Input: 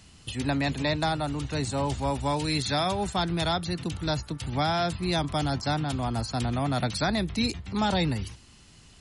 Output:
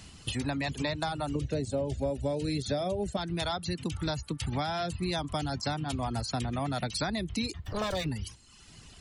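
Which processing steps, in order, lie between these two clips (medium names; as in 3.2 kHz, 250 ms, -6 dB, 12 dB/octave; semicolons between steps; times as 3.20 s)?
7.64–8.06 s: comb filter that takes the minimum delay 1.7 ms; reverb removal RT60 0.81 s; 1.35–3.17 s: resonant low shelf 730 Hz +7.5 dB, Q 3; compression 6:1, threshold -33 dBFS, peak gain reduction 17 dB; trim +4 dB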